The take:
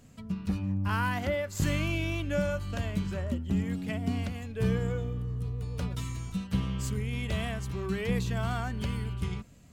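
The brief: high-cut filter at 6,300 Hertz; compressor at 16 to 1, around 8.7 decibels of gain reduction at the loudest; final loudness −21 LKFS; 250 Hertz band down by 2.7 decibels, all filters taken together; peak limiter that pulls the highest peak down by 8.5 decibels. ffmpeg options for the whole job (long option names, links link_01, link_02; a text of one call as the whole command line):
ffmpeg -i in.wav -af "lowpass=6300,equalizer=frequency=250:width_type=o:gain=-4,acompressor=threshold=-33dB:ratio=16,volume=19.5dB,alimiter=limit=-12dB:level=0:latency=1" out.wav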